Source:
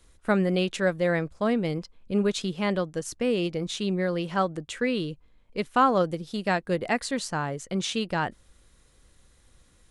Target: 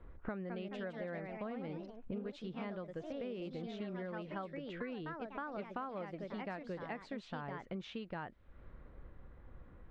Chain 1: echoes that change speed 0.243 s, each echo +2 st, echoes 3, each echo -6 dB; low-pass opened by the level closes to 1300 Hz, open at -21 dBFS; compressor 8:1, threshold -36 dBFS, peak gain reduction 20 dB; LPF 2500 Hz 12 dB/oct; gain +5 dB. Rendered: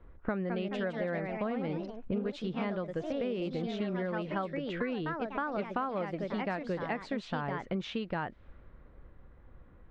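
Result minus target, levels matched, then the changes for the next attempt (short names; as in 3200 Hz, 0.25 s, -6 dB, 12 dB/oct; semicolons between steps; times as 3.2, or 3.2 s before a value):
compressor: peak gain reduction -9 dB
change: compressor 8:1, threshold -46 dBFS, peak gain reduction 28.5 dB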